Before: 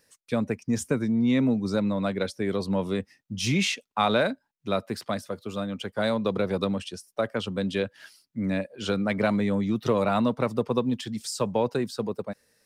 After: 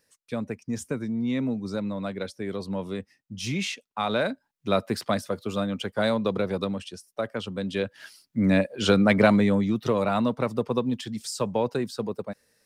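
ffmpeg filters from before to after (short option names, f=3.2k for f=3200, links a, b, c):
-af "volume=13.5dB,afade=t=in:st=4.04:d=0.82:silence=0.375837,afade=t=out:st=5.48:d=1.26:silence=0.473151,afade=t=in:st=7.67:d=0.92:silence=0.334965,afade=t=out:st=9.13:d=0.68:silence=0.421697"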